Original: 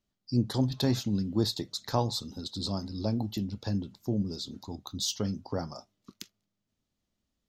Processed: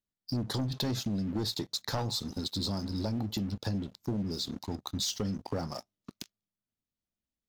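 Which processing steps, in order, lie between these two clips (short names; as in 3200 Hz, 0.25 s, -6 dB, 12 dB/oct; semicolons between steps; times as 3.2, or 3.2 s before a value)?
sample leveller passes 3; compressor, threshold -23 dBFS, peak gain reduction 7.5 dB; gain -6.5 dB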